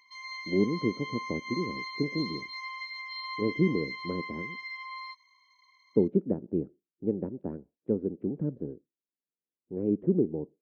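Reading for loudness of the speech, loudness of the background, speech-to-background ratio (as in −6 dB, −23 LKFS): −31.5 LKFS, −37.5 LKFS, 6.0 dB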